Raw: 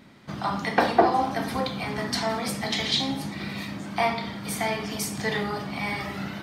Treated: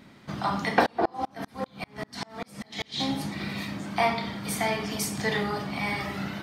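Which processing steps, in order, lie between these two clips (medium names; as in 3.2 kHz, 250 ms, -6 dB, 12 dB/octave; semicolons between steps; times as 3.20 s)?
0.86–3.01 s: sawtooth tremolo in dB swelling 5.1 Hz, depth 35 dB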